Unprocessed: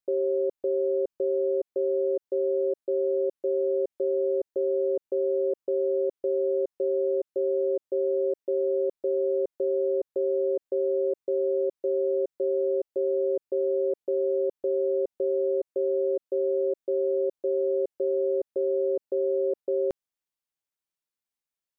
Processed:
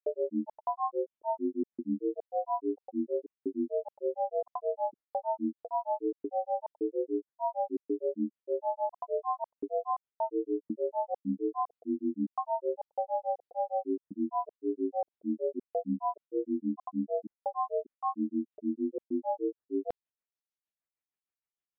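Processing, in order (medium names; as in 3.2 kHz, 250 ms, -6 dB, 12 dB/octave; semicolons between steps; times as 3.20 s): resampled via 8 kHz; granulator 147 ms, grains 6.5 per s, spray 28 ms, pitch spread up and down by 12 st; trim -2.5 dB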